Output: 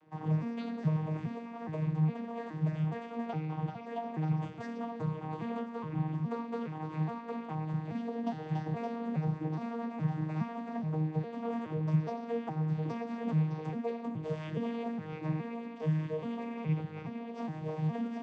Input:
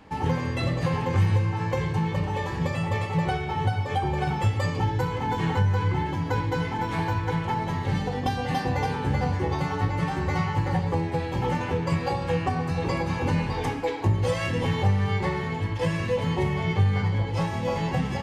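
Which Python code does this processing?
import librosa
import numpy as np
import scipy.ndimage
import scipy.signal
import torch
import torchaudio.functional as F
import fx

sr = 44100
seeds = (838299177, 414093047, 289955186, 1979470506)

y = fx.vocoder_arp(x, sr, chord='bare fifth', root=51, every_ms=416)
y = y * 10.0 ** (-7.5 / 20.0)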